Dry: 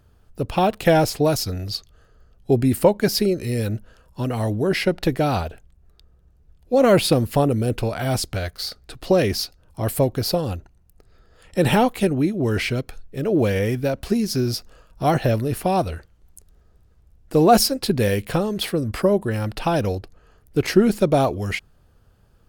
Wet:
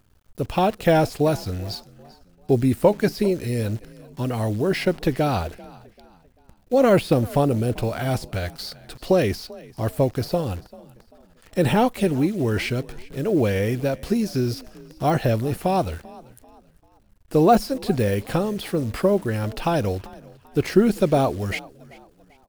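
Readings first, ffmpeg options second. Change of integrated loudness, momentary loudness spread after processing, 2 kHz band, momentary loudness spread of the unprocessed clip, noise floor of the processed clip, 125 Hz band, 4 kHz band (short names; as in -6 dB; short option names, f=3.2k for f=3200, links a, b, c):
-1.5 dB, 12 LU, -2.0 dB, 12 LU, -57 dBFS, -1.0 dB, -6.5 dB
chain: -filter_complex "[0:a]deesser=0.6,acrusher=bits=8:dc=4:mix=0:aa=0.000001,asplit=2[a][b];[b]asplit=3[c][d][e];[c]adelay=391,afreqshift=40,volume=-21.5dB[f];[d]adelay=782,afreqshift=80,volume=-30.4dB[g];[e]adelay=1173,afreqshift=120,volume=-39.2dB[h];[f][g][h]amix=inputs=3:normalize=0[i];[a][i]amix=inputs=2:normalize=0,volume=-1dB"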